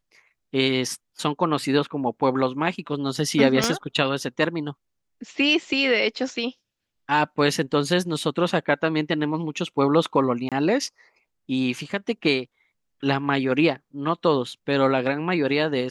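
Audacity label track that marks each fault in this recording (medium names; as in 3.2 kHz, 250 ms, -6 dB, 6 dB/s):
3.640000	3.640000	pop -6 dBFS
10.490000	10.520000	dropout 27 ms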